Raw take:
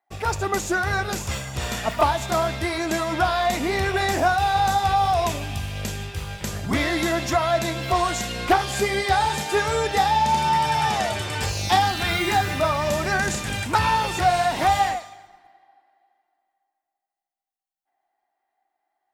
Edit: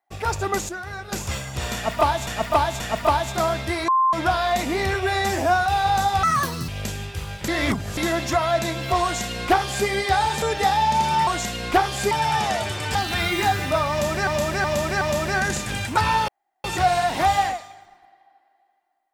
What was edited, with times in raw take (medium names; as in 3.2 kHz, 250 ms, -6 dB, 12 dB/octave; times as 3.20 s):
0.69–1.12 s: gain -10 dB
1.74–2.27 s: loop, 3 plays
2.82–3.07 s: bleep 1.05 kHz -15 dBFS
3.88–4.36 s: stretch 1.5×
4.93–5.68 s: speed 166%
6.48–6.97 s: reverse
8.03–8.87 s: copy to 10.61 s
9.42–9.76 s: delete
11.45–11.84 s: delete
12.79–13.16 s: loop, 4 plays
14.06 s: insert room tone 0.36 s